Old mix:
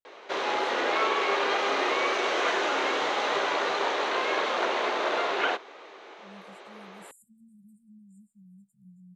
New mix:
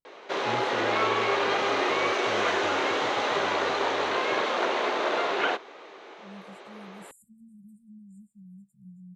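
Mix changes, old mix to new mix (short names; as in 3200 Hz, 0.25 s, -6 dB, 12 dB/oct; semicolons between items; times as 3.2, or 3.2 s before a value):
first voice: remove HPF 340 Hz 12 dB/oct; master: add low shelf 200 Hz +9 dB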